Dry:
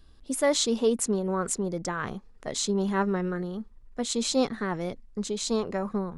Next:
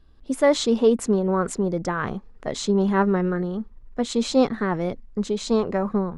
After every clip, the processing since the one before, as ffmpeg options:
ffmpeg -i in.wav -af "lowpass=frequency=2100:poles=1,dynaudnorm=framelen=150:gausssize=3:maxgain=6.5dB" out.wav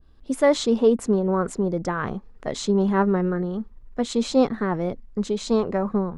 ffmpeg -i in.wav -af "adynamicequalizer=threshold=0.0158:dfrequency=1500:dqfactor=0.7:tfrequency=1500:tqfactor=0.7:attack=5:release=100:ratio=0.375:range=3:mode=cutabove:tftype=highshelf" out.wav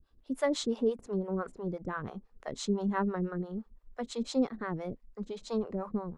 ffmpeg -i in.wav -filter_complex "[0:a]acrossover=split=480[link_01][link_02];[link_01]aeval=exprs='val(0)*(1-1/2+1/2*cos(2*PI*5.9*n/s))':channel_layout=same[link_03];[link_02]aeval=exprs='val(0)*(1-1/2-1/2*cos(2*PI*5.9*n/s))':channel_layout=same[link_04];[link_03][link_04]amix=inputs=2:normalize=0,volume=-6dB" out.wav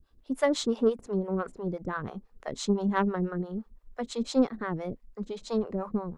ffmpeg -i in.wav -af "aeval=exprs='0.141*(cos(1*acos(clip(val(0)/0.141,-1,1)))-cos(1*PI/2))+0.0141*(cos(3*acos(clip(val(0)/0.141,-1,1)))-cos(3*PI/2))+0.000891*(cos(6*acos(clip(val(0)/0.141,-1,1)))-cos(6*PI/2))':channel_layout=same,volume=6dB" out.wav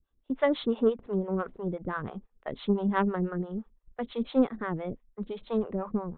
ffmpeg -i in.wav -af "agate=range=-12dB:threshold=-44dB:ratio=16:detection=peak,aresample=8000,aresample=44100" out.wav

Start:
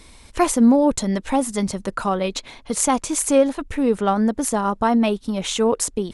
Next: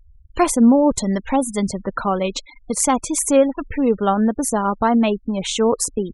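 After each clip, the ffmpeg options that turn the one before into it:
ffmpeg -i in.wav -af "afftfilt=real='re*gte(hypot(re,im),0.0282)':imag='im*gte(hypot(re,im),0.0282)':win_size=1024:overlap=0.75,volume=1.5dB" out.wav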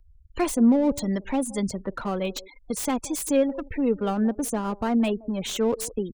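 ffmpeg -i in.wav -filter_complex "[0:a]acrossover=split=310|640|1500[link_01][link_02][link_03][link_04];[link_02]aecho=1:1:174:0.2[link_05];[link_03]aeval=exprs='(tanh(44.7*val(0)+0.45)-tanh(0.45))/44.7':channel_layout=same[link_06];[link_04]aeval=exprs='0.0944*(abs(mod(val(0)/0.0944+3,4)-2)-1)':channel_layout=same[link_07];[link_01][link_05][link_06][link_07]amix=inputs=4:normalize=0,volume=-5.5dB" out.wav

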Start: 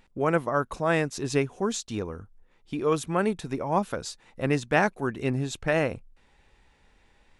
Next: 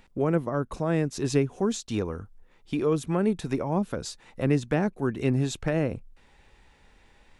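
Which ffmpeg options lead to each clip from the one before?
ffmpeg -i in.wav -filter_complex "[0:a]acrossover=split=440[link_01][link_02];[link_02]acompressor=threshold=-36dB:ratio=5[link_03];[link_01][link_03]amix=inputs=2:normalize=0,volume=3.5dB" out.wav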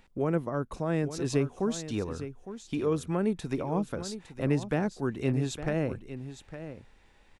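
ffmpeg -i in.wav -af "aecho=1:1:859:0.251,volume=-3.5dB" out.wav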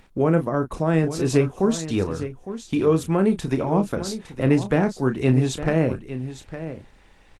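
ffmpeg -i in.wav -filter_complex "[0:a]asplit=2[link_01][link_02];[link_02]adelay=31,volume=-9dB[link_03];[link_01][link_03]amix=inputs=2:normalize=0,volume=8.5dB" -ar 48000 -c:a libopus -b:a 20k out.opus

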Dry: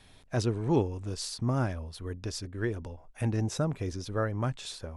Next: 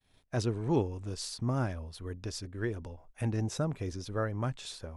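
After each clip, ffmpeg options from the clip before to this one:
ffmpeg -i in.wav -af "agate=range=-33dB:threshold=-48dB:ratio=3:detection=peak,volume=-2.5dB" out.wav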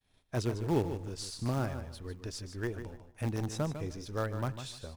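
ffmpeg -i in.wav -filter_complex "[0:a]asplit=2[link_01][link_02];[link_02]acrusher=bits=5:dc=4:mix=0:aa=0.000001,volume=-11dB[link_03];[link_01][link_03]amix=inputs=2:normalize=0,aecho=1:1:150|300|450:0.316|0.0727|0.0167,volume=-3.5dB" out.wav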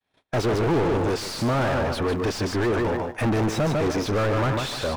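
ffmpeg -i in.wav -filter_complex "[0:a]agate=range=-33dB:threshold=-51dB:ratio=3:detection=peak,asplit=2[link_01][link_02];[link_02]highpass=frequency=720:poles=1,volume=42dB,asoftclip=type=tanh:threshold=-17.5dB[link_03];[link_01][link_03]amix=inputs=2:normalize=0,lowpass=frequency=1200:poles=1,volume=-6dB,volume=3dB" out.wav

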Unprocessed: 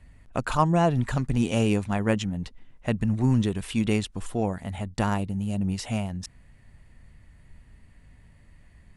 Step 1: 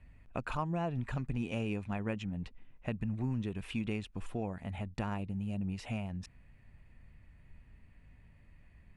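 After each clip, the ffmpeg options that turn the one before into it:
ffmpeg -i in.wav -af "equalizer=frequency=2500:width=7.1:gain=8,acompressor=threshold=-28dB:ratio=2.5,bass=frequency=250:gain=1,treble=frequency=4000:gain=-10,volume=-6.5dB" out.wav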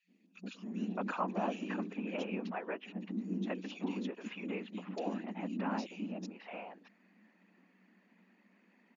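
ffmpeg -i in.wav -filter_complex "[0:a]acrossover=split=320|2800[link_01][link_02][link_03];[link_01]adelay=80[link_04];[link_02]adelay=620[link_05];[link_04][link_05][link_03]amix=inputs=3:normalize=0,afftfilt=real='hypot(re,im)*cos(2*PI*random(0))':imag='hypot(re,im)*sin(2*PI*random(1))':win_size=512:overlap=0.75,afftfilt=real='re*between(b*sr/4096,180,7100)':imag='im*between(b*sr/4096,180,7100)':win_size=4096:overlap=0.75,volume=8dB" out.wav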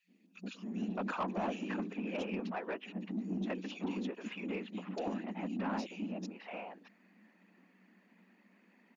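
ffmpeg -i in.wav -af "asoftclip=type=tanh:threshold=-30dB,volume=1.5dB" out.wav

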